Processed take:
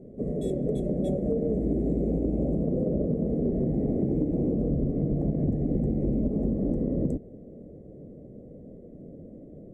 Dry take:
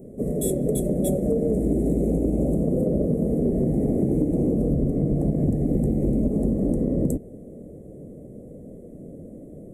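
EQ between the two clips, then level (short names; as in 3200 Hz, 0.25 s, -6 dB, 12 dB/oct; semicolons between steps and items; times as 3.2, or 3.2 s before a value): air absorption 160 m; -4.0 dB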